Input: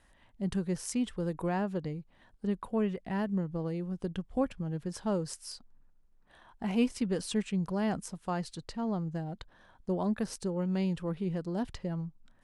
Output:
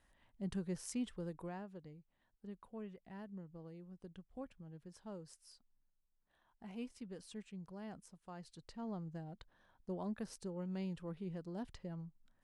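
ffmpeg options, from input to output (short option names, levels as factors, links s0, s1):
-af "volume=0.841,afade=t=out:st=1.04:d=0.63:silence=0.334965,afade=t=in:st=8.33:d=0.5:silence=0.446684"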